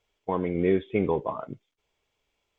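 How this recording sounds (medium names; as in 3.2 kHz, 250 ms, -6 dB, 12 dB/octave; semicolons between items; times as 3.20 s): noise floor -80 dBFS; spectral tilt -5.0 dB/octave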